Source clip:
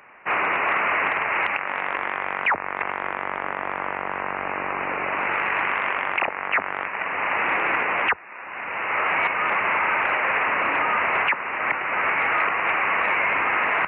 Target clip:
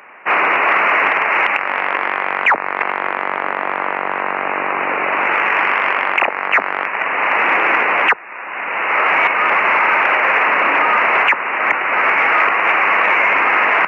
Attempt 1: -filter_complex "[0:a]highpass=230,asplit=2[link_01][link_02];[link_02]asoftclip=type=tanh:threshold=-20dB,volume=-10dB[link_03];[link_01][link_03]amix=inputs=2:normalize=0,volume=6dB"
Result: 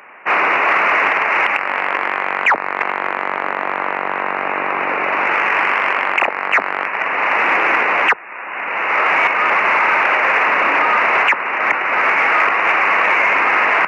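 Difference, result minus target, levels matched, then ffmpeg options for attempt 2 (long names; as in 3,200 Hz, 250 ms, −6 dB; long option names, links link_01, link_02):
soft clipping: distortion +9 dB
-filter_complex "[0:a]highpass=230,asplit=2[link_01][link_02];[link_02]asoftclip=type=tanh:threshold=-13dB,volume=-10dB[link_03];[link_01][link_03]amix=inputs=2:normalize=0,volume=6dB"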